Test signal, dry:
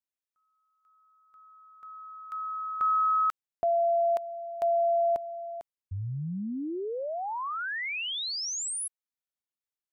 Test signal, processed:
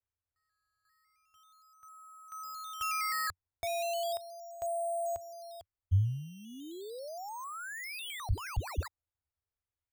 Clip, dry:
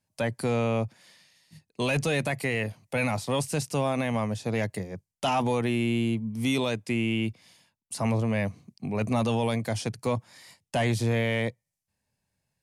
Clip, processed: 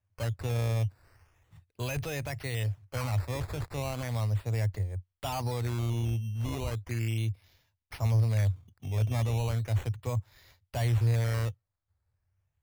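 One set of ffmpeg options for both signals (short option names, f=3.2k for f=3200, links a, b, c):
-af "acrusher=samples=10:mix=1:aa=0.000001:lfo=1:lforange=10:lforate=0.36,lowshelf=f=130:t=q:w=3:g=12.5,volume=-8.5dB"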